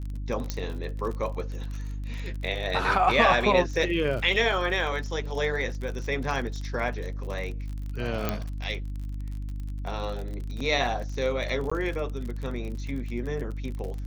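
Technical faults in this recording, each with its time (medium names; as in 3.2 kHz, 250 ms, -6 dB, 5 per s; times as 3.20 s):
crackle 37 per s -33 dBFS
hum 50 Hz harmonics 6 -33 dBFS
0.50 s: pop -15 dBFS
8.29 s: pop -11 dBFS
10.60 s: dropout 4.8 ms
11.70–11.71 s: dropout 15 ms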